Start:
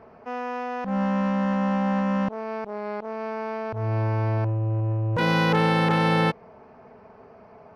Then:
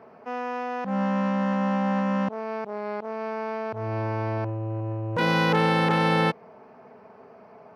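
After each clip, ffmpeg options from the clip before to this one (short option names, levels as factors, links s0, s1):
-af "highpass=150"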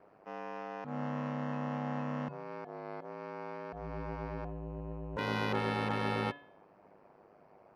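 -af "aeval=exprs='val(0)*sin(2*PI*51*n/s)':c=same,bandreject=f=142.6:t=h:w=4,bandreject=f=285.2:t=h:w=4,bandreject=f=427.8:t=h:w=4,bandreject=f=570.4:t=h:w=4,bandreject=f=713:t=h:w=4,bandreject=f=855.6:t=h:w=4,bandreject=f=998.2:t=h:w=4,bandreject=f=1140.8:t=h:w=4,bandreject=f=1283.4:t=h:w=4,bandreject=f=1426:t=h:w=4,bandreject=f=1568.6:t=h:w=4,bandreject=f=1711.2:t=h:w=4,bandreject=f=1853.8:t=h:w=4,bandreject=f=1996.4:t=h:w=4,bandreject=f=2139:t=h:w=4,bandreject=f=2281.6:t=h:w=4,bandreject=f=2424.2:t=h:w=4,bandreject=f=2566.8:t=h:w=4,bandreject=f=2709.4:t=h:w=4,bandreject=f=2852:t=h:w=4,bandreject=f=2994.6:t=h:w=4,bandreject=f=3137.2:t=h:w=4,bandreject=f=3279.8:t=h:w=4,bandreject=f=3422.4:t=h:w=4,bandreject=f=3565:t=h:w=4,bandreject=f=3707.6:t=h:w=4,bandreject=f=3850.2:t=h:w=4,bandreject=f=3992.8:t=h:w=4,bandreject=f=4135.4:t=h:w=4,bandreject=f=4278:t=h:w=4,bandreject=f=4420.6:t=h:w=4,bandreject=f=4563.2:t=h:w=4,bandreject=f=4705.8:t=h:w=4,bandreject=f=4848.4:t=h:w=4,volume=0.376"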